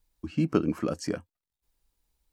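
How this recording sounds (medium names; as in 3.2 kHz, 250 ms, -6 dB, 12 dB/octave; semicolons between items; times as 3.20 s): noise floor -91 dBFS; spectral tilt -7.0 dB/octave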